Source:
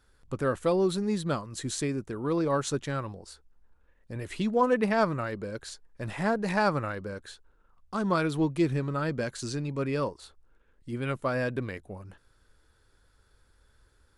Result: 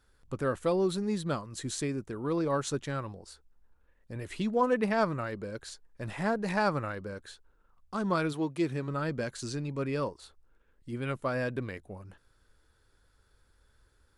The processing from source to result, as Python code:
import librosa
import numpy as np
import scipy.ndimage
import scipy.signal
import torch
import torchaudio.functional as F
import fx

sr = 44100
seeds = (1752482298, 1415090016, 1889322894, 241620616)

y = fx.highpass(x, sr, hz=fx.line((8.32, 330.0), (8.87, 140.0)), slope=6, at=(8.32, 8.87), fade=0.02)
y = y * 10.0 ** (-2.5 / 20.0)